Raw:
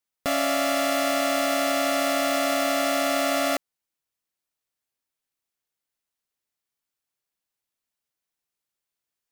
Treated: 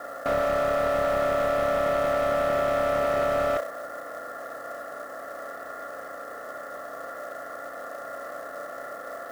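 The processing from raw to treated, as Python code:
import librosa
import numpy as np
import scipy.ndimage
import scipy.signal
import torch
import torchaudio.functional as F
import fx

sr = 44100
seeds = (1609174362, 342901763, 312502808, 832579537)

p1 = fx.bin_compress(x, sr, power=0.2)
p2 = fx.doubler(p1, sr, ms=34.0, db=-5.0)
p3 = fx.add_hum(p2, sr, base_hz=60, snr_db=29)
p4 = scipy.signal.sosfilt(scipy.signal.cheby1(6, 6, 1900.0, 'lowpass', fs=sr, output='sos'), p3)
p5 = p4 + fx.room_flutter(p4, sr, wall_m=5.5, rt60_s=0.33, dry=0)
p6 = fx.quant_companded(p5, sr, bits=6)
p7 = fx.highpass(p6, sr, hz=1200.0, slope=6)
p8 = fx.slew_limit(p7, sr, full_power_hz=29.0)
y = F.gain(torch.from_numpy(p8), 7.5).numpy()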